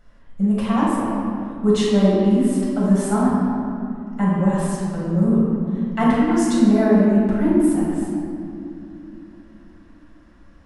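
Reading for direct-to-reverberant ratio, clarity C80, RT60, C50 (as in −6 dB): −8.5 dB, −0.5 dB, 2.7 s, −3.0 dB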